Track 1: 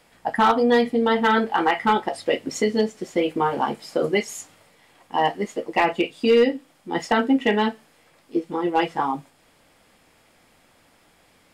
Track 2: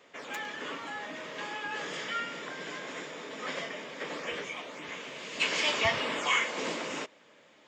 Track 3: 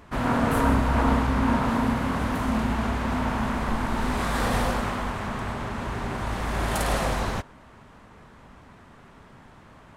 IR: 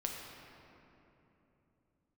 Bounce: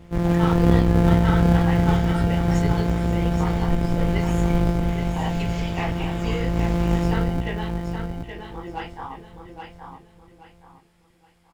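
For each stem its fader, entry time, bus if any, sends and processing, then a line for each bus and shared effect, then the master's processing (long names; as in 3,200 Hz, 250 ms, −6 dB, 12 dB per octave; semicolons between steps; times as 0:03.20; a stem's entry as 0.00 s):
−5.5 dB, 0.00 s, no send, echo send −6.5 dB, low-shelf EQ 450 Hz −10.5 dB; micro pitch shift up and down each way 52 cents
−1.5 dB, 0.00 s, no send, no echo send, downward compressor, threshold −35 dBFS, peak gain reduction 12.5 dB
−3.5 dB, 0.00 s, no send, echo send −7 dB, samples sorted by size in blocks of 256 samples; tilt shelving filter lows +10 dB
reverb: not used
echo: repeating echo 823 ms, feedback 30%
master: no processing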